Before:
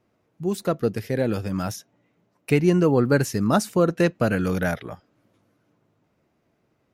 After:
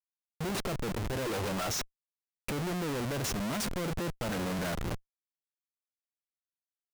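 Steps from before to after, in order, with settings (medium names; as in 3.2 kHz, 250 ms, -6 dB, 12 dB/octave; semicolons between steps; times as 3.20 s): time-frequency box 1.26–2.17 s, 330–8900 Hz +12 dB; Schmitt trigger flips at -35 dBFS; trim -9 dB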